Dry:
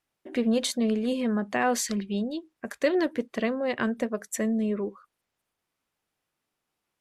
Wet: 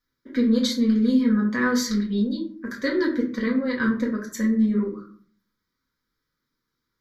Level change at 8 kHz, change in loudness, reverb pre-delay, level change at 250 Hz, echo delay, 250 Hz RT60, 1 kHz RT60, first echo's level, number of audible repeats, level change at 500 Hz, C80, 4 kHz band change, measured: −2.0 dB, +5.0 dB, 4 ms, +7.0 dB, no echo audible, 0.70 s, 0.45 s, no echo audible, no echo audible, −0.5 dB, 12.5 dB, +3.5 dB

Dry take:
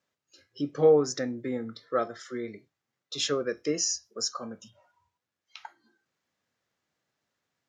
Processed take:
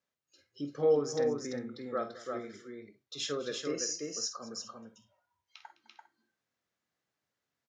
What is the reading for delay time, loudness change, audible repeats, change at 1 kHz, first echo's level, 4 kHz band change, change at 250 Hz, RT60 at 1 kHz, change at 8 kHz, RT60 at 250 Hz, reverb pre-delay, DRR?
49 ms, −5.5 dB, 4, −5.5 dB, −10.5 dB, −5.5 dB, −6.0 dB, no reverb audible, −5.5 dB, no reverb audible, no reverb audible, no reverb audible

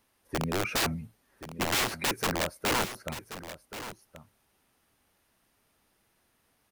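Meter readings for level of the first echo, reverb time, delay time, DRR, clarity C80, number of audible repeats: −12.5 dB, no reverb audible, 1,079 ms, no reverb audible, no reverb audible, 1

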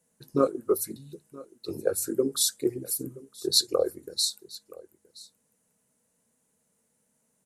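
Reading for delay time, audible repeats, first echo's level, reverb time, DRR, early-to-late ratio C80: 973 ms, 1, −21.0 dB, no reverb audible, no reverb audible, no reverb audible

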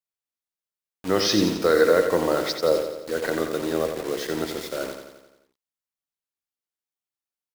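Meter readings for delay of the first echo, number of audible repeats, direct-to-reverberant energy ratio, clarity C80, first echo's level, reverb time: 87 ms, 6, no reverb audible, no reverb audible, −7.5 dB, no reverb audible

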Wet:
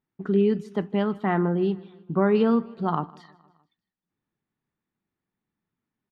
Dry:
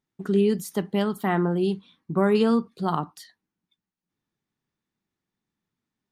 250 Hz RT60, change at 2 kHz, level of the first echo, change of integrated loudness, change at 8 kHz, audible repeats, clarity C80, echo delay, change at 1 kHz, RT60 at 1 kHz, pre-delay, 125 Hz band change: no reverb audible, −1.0 dB, −23.0 dB, 0.0 dB, can't be measured, 3, no reverb audible, 155 ms, 0.0 dB, no reverb audible, no reverb audible, 0.0 dB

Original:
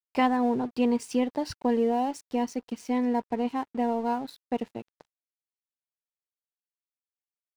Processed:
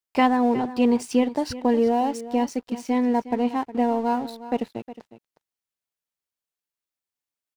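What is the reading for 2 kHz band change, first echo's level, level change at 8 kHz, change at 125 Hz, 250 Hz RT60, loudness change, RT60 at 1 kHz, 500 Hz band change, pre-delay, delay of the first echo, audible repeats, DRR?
+4.5 dB, −15.0 dB, +4.5 dB, can't be measured, no reverb audible, +4.5 dB, no reverb audible, +4.5 dB, no reverb audible, 362 ms, 1, no reverb audible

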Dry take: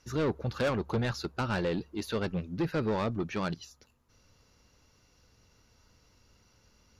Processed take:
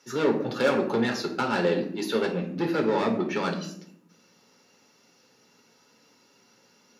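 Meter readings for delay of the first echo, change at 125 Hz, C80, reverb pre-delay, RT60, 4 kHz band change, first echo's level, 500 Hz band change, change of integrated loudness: no echo audible, −2.0 dB, 12.0 dB, 7 ms, 0.70 s, +6.0 dB, no echo audible, +7.5 dB, +6.0 dB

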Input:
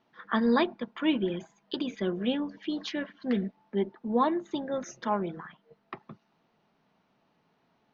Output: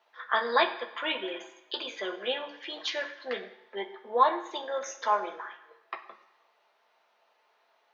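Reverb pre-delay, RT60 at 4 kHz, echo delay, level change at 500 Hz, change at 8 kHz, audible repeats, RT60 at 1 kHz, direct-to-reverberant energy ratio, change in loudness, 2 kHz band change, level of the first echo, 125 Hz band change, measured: 3 ms, 1.0 s, no echo audible, −1.0 dB, can't be measured, no echo audible, 1.0 s, 2.0 dB, −0.5 dB, +5.5 dB, no echo audible, below −25 dB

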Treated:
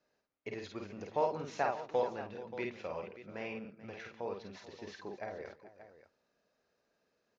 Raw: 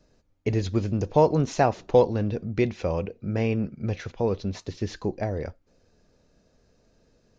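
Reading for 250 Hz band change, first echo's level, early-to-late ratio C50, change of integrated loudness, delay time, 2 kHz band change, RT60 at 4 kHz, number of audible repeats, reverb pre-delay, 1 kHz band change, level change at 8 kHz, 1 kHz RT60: −18.5 dB, −4.0 dB, no reverb audible, −13.5 dB, 50 ms, −7.0 dB, no reverb audible, 4, no reverb audible, −9.5 dB, can't be measured, no reverb audible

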